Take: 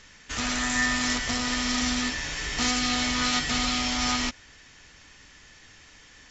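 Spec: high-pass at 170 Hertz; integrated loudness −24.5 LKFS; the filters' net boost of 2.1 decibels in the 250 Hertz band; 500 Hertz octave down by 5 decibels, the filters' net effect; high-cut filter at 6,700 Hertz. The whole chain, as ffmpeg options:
ffmpeg -i in.wav -af "highpass=170,lowpass=6700,equalizer=frequency=250:width_type=o:gain=4.5,equalizer=frequency=500:width_type=o:gain=-7.5,volume=1.5dB" out.wav

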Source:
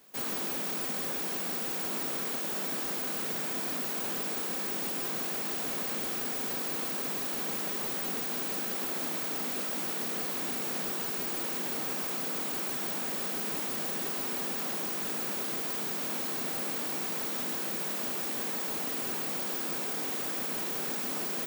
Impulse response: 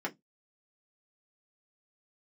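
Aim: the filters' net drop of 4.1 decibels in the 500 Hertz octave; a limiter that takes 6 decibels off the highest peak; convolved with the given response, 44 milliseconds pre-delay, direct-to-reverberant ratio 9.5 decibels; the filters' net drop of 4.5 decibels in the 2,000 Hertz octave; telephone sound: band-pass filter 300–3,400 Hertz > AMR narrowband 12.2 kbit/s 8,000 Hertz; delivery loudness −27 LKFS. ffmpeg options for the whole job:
-filter_complex "[0:a]equalizer=frequency=500:width_type=o:gain=-4,equalizer=frequency=2000:width_type=o:gain=-5,alimiter=level_in=3.5dB:limit=-24dB:level=0:latency=1,volume=-3.5dB,asplit=2[link_01][link_02];[1:a]atrim=start_sample=2205,adelay=44[link_03];[link_02][link_03]afir=irnorm=-1:irlink=0,volume=-14dB[link_04];[link_01][link_04]amix=inputs=2:normalize=0,highpass=300,lowpass=3400,volume=19.5dB" -ar 8000 -c:a libopencore_amrnb -b:a 12200

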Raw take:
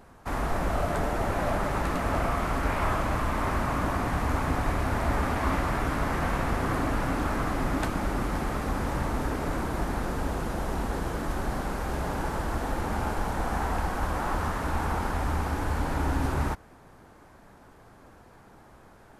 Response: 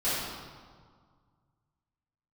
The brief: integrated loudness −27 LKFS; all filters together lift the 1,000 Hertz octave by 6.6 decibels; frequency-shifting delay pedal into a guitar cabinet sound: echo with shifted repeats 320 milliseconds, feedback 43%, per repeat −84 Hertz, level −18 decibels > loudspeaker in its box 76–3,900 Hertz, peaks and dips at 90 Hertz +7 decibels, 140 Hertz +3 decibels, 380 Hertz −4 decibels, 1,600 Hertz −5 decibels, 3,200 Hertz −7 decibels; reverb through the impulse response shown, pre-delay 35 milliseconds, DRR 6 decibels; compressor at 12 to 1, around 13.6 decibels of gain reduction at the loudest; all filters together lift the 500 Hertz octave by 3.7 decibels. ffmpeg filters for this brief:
-filter_complex "[0:a]equalizer=frequency=500:width_type=o:gain=3,equalizer=frequency=1000:width_type=o:gain=8,acompressor=threshold=-33dB:ratio=12,asplit=2[link_01][link_02];[1:a]atrim=start_sample=2205,adelay=35[link_03];[link_02][link_03]afir=irnorm=-1:irlink=0,volume=-16.5dB[link_04];[link_01][link_04]amix=inputs=2:normalize=0,asplit=5[link_05][link_06][link_07][link_08][link_09];[link_06]adelay=320,afreqshift=-84,volume=-18dB[link_10];[link_07]adelay=640,afreqshift=-168,volume=-25.3dB[link_11];[link_08]adelay=960,afreqshift=-252,volume=-32.7dB[link_12];[link_09]adelay=1280,afreqshift=-336,volume=-40dB[link_13];[link_05][link_10][link_11][link_12][link_13]amix=inputs=5:normalize=0,highpass=76,equalizer=frequency=90:width_type=q:width=4:gain=7,equalizer=frequency=140:width_type=q:width=4:gain=3,equalizer=frequency=380:width_type=q:width=4:gain=-4,equalizer=frequency=1600:width_type=q:width=4:gain=-5,equalizer=frequency=3200:width_type=q:width=4:gain=-7,lowpass=frequency=3900:width=0.5412,lowpass=frequency=3900:width=1.3066,volume=10dB"

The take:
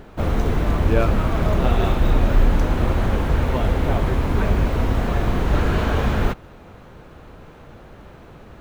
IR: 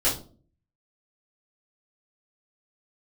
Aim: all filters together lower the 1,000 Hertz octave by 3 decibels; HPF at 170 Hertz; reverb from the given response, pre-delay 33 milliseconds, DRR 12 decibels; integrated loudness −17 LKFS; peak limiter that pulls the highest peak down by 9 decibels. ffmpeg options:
-filter_complex "[0:a]highpass=170,equalizer=frequency=1000:width_type=o:gain=-4,alimiter=limit=-19.5dB:level=0:latency=1,asplit=2[link_01][link_02];[1:a]atrim=start_sample=2205,adelay=33[link_03];[link_02][link_03]afir=irnorm=-1:irlink=0,volume=-24.5dB[link_04];[link_01][link_04]amix=inputs=2:normalize=0,volume=11.5dB"

